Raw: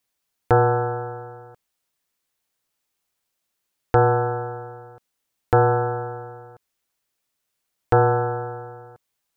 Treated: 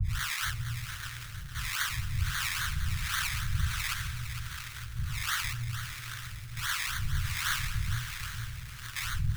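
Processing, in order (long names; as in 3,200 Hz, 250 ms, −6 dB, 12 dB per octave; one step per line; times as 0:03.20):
spike at every zero crossing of −11 dBFS
octave-band graphic EQ 125/250/500/1,000/2,000 Hz −5/−6/−8/−8/−11 dB
four-comb reverb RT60 3.4 s, combs from 28 ms, DRR 14.5 dB
in parallel at −4.5 dB: wave folding −23.5 dBFS
on the sum: sample-and-hold swept by an LFO 24×, swing 60% 3.7 Hz
elliptic band-stop filter 120–1,500 Hz, stop band 50 dB
high-shelf EQ 2,100 Hz −3.5 dB
on a send: feedback delay with all-pass diffusion 766 ms, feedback 41%, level −15.5 dB
on the sum: two-band tremolo in antiphase 1.4 Hz, depth 100%, crossover 400 Hz
feedback echo at a low word length 457 ms, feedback 55%, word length 7 bits, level −9 dB
level −6.5 dB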